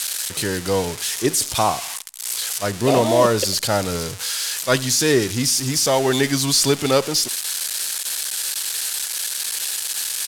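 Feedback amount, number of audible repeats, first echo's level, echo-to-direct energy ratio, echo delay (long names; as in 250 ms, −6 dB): 41%, 2, −23.0 dB, −22.0 dB, 68 ms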